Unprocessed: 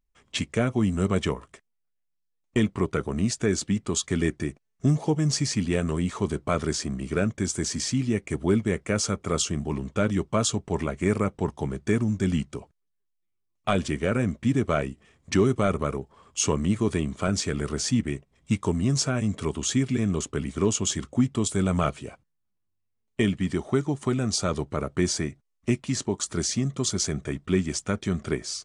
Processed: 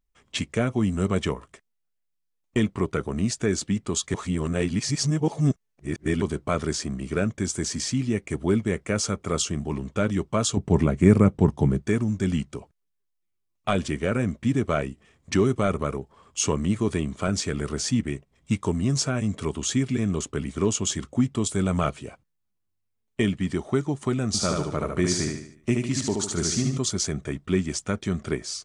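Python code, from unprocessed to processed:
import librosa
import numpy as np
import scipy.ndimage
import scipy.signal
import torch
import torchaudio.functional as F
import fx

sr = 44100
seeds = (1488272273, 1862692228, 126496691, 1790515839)

y = fx.peak_eq(x, sr, hz=140.0, db=10.5, octaves=3.0, at=(10.57, 11.82))
y = fx.echo_feedback(y, sr, ms=74, feedback_pct=43, wet_db=-3.5, at=(24.27, 26.78))
y = fx.edit(y, sr, fx.reverse_span(start_s=4.14, length_s=2.08), tone=tone)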